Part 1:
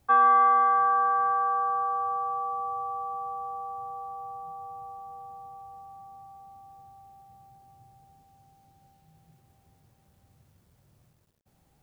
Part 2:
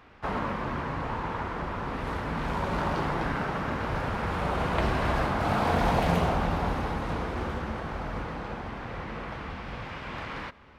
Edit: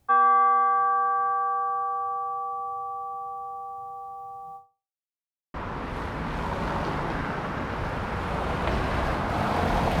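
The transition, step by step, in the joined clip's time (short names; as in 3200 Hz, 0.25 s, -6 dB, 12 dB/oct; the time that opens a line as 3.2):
part 1
4.56–5.08 fade out exponential
5.08–5.54 mute
5.54 switch to part 2 from 1.65 s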